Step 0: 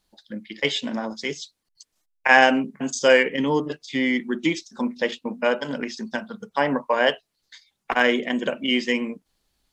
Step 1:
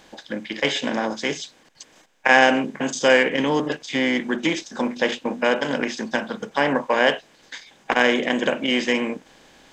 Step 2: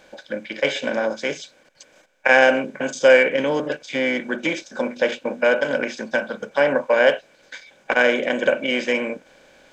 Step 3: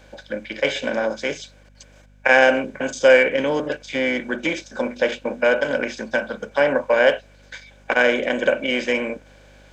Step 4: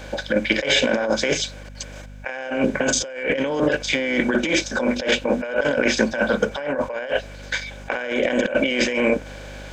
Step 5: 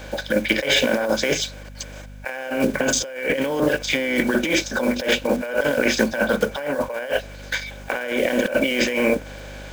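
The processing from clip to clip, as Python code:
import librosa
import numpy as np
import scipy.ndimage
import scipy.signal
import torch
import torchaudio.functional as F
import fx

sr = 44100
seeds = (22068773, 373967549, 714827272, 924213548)

y1 = fx.bin_compress(x, sr, power=0.6)
y1 = y1 * 10.0 ** (-2.0 / 20.0)
y2 = fx.small_body(y1, sr, hz=(560.0, 1500.0, 2300.0), ring_ms=30, db=12)
y2 = y2 * 10.0 ** (-4.0 / 20.0)
y3 = fx.add_hum(y2, sr, base_hz=50, snr_db=30)
y4 = fx.over_compress(y3, sr, threshold_db=-28.0, ratio=-1.0)
y4 = y4 * 10.0 ** (5.5 / 20.0)
y5 = fx.block_float(y4, sr, bits=5)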